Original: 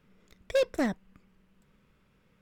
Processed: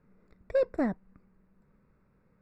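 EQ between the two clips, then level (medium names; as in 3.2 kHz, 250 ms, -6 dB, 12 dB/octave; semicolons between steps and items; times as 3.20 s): boxcar filter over 14 samples; 0.0 dB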